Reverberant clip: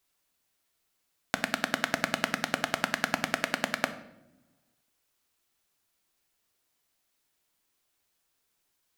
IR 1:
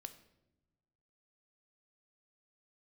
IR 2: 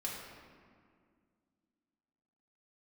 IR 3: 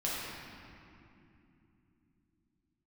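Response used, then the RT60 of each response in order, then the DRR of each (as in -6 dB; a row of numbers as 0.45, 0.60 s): 1; not exponential, 2.1 s, 3.0 s; 9.0, -4.5, -7.5 dB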